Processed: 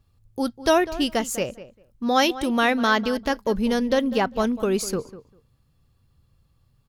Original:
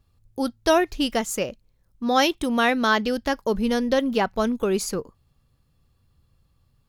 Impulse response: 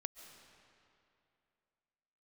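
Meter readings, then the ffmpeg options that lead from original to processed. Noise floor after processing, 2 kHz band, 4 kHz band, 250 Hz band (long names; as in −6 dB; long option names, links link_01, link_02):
−65 dBFS, 0.0 dB, 0.0 dB, +0.5 dB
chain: -filter_complex "[0:a]equalizer=frequency=120:width_type=o:width=0.77:gain=3,asplit=2[link_01][link_02];[link_02]adelay=198,lowpass=frequency=2300:poles=1,volume=-15dB,asplit=2[link_03][link_04];[link_04]adelay=198,lowpass=frequency=2300:poles=1,volume=0.17[link_05];[link_03][link_05]amix=inputs=2:normalize=0[link_06];[link_01][link_06]amix=inputs=2:normalize=0"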